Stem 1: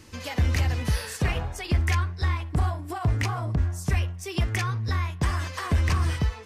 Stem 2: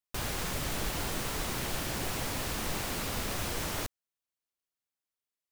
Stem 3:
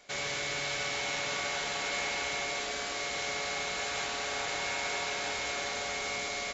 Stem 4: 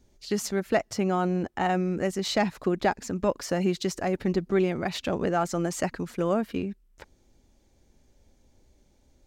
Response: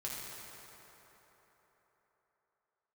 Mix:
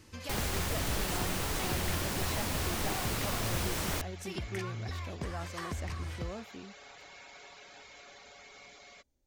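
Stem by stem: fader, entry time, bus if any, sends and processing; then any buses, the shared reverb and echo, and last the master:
-7.0 dB, 0.00 s, no send, compressor, threshold -29 dBFS, peak gain reduction 10.5 dB
0.0 dB, 0.15 s, no send, dry
-15.5 dB, 2.50 s, no send, LPF 7000 Hz; reverb removal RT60 0.82 s
-17.5 dB, 0.00 s, no send, high shelf 11000 Hz +10 dB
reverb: off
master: dry

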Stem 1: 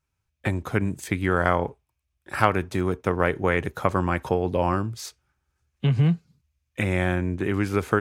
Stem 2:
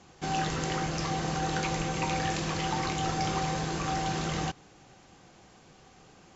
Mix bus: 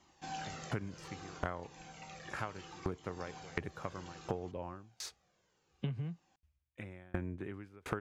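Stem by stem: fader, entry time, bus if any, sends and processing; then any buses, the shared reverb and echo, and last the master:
+1.0 dB, 0.00 s, no send, LPF 3200 Hz 6 dB/oct; dB-ramp tremolo decaying 1.4 Hz, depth 39 dB
-5.0 dB, 0.00 s, no send, low shelf 130 Hz -10.5 dB; de-hum 64.03 Hz, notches 27; cascading flanger falling 0.66 Hz; auto duck -9 dB, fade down 1.70 s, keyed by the first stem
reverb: off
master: compressor 8:1, threshold -34 dBFS, peak gain reduction 16.5 dB

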